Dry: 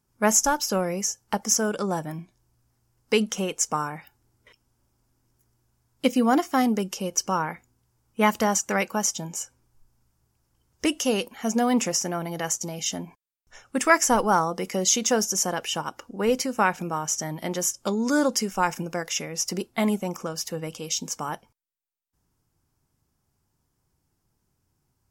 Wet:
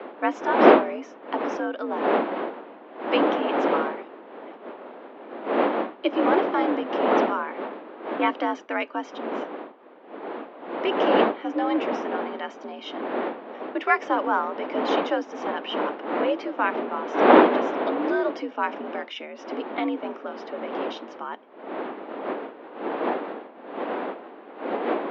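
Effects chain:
wind on the microphone 610 Hz −23 dBFS
single-sideband voice off tune +69 Hz 180–3,600 Hz
level −2.5 dB

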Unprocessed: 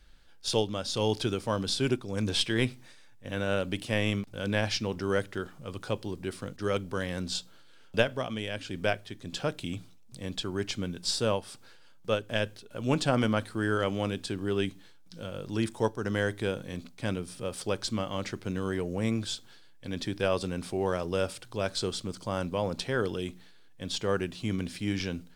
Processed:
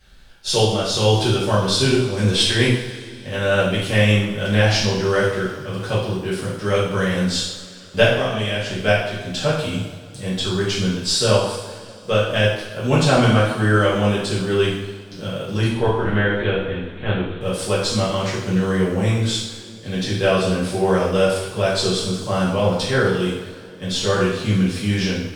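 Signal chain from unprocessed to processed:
0:15.67–0:17.41: linear-prediction vocoder at 8 kHz pitch kept
coupled-rooms reverb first 0.78 s, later 3.1 s, from −18 dB, DRR −9.5 dB
level +2 dB

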